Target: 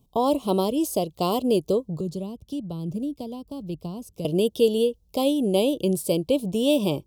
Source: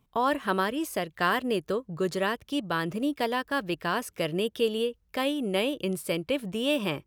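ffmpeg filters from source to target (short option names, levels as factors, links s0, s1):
-filter_complex "[0:a]asettb=1/sr,asplit=3[s0][s1][s2];[s0]atrim=end=2.004[s3];[s1]atrim=start=2:end=4.25,asetpts=PTS-STARTPTS,afade=t=in:d=0.004:c=qsin,afade=t=out:st=2.246:d=0.004:c=qsin,acrossover=split=220[s4][s5];[s5]acompressor=threshold=0.00708:ratio=5[s6];[s4][s6]amix=inputs=2:normalize=0[s7];[s2]atrim=start=4.246[s8];[s3][s7]acrossfade=d=0.004:c1=hsin:c2=qsin[s9];[s9][s8]acrossfade=d=0.004:c1=qsin:c2=hsin,asuperstop=centerf=1700:order=4:qfactor=0.59,volume=2.24"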